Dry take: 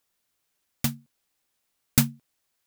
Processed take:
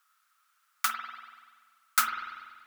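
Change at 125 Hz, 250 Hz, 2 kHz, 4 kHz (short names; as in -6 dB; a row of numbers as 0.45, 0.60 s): under -35 dB, -30.0 dB, +6.0 dB, -2.0 dB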